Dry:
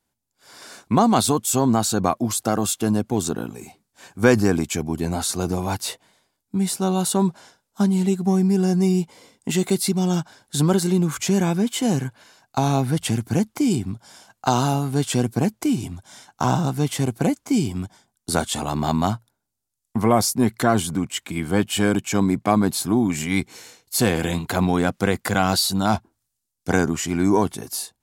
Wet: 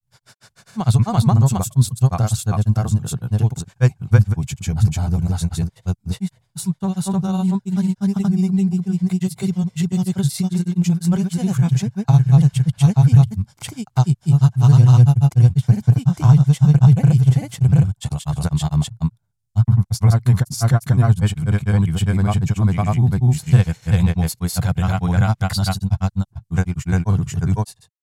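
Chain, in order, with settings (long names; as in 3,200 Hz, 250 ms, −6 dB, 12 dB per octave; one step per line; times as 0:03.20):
low shelf with overshoot 190 Hz +13 dB, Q 3
granular cloud, grains 20 per second, spray 599 ms, pitch spread up and down by 0 semitones
level −3.5 dB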